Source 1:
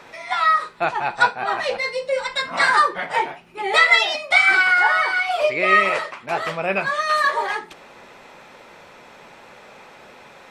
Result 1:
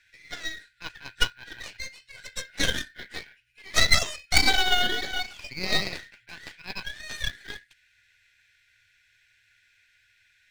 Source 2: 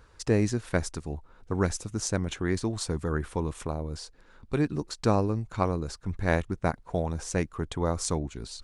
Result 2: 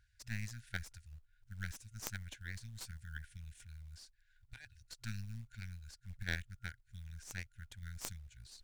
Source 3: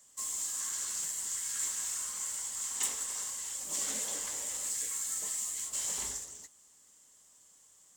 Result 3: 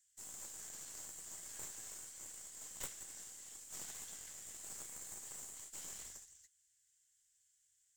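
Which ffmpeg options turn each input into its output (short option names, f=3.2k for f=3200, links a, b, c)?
-af "afftfilt=real='re*(1-between(b*sr/4096,120,1400))':imag='im*(1-between(b*sr/4096,120,1400))':win_size=4096:overlap=0.75,acrusher=bits=7:mode=log:mix=0:aa=0.000001,aeval=exprs='0.75*(cos(1*acos(clip(val(0)/0.75,-1,1)))-cos(1*PI/2))+0.188*(cos(2*acos(clip(val(0)/0.75,-1,1)))-cos(2*PI/2))+0.299*(cos(3*acos(clip(val(0)/0.75,-1,1)))-cos(3*PI/2))+0.211*(cos(4*acos(clip(val(0)/0.75,-1,1)))-cos(4*PI/2))+0.0531*(cos(5*acos(clip(val(0)/0.75,-1,1)))-cos(5*PI/2))':c=same,volume=1.5dB"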